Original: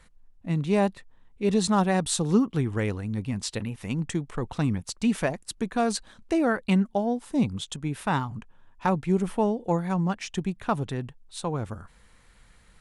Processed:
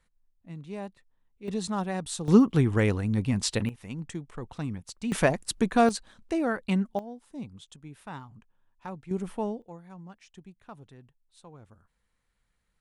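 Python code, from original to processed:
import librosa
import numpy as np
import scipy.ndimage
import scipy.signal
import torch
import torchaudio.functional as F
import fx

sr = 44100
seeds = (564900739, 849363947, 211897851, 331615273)

y = fx.gain(x, sr, db=fx.steps((0.0, -15.0), (1.48, -8.0), (2.28, 3.5), (3.69, -8.0), (5.12, 4.0), (5.89, -4.0), (6.99, -15.0), (9.11, -7.0), (9.62, -20.0)))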